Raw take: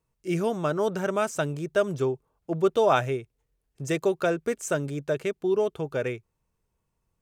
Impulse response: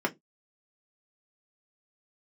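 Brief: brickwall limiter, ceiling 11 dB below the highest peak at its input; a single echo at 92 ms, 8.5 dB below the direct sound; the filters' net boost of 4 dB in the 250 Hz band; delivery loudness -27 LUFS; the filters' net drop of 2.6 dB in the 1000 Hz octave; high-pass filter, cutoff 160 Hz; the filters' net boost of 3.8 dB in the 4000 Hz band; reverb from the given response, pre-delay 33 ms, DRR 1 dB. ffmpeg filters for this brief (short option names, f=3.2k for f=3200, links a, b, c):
-filter_complex "[0:a]highpass=160,equalizer=f=250:t=o:g=8,equalizer=f=1k:t=o:g=-4.5,equalizer=f=4k:t=o:g=5,alimiter=limit=-19dB:level=0:latency=1,aecho=1:1:92:0.376,asplit=2[a][b];[1:a]atrim=start_sample=2205,adelay=33[c];[b][c]afir=irnorm=-1:irlink=0,volume=-10.5dB[d];[a][d]amix=inputs=2:normalize=0,volume=-2.5dB"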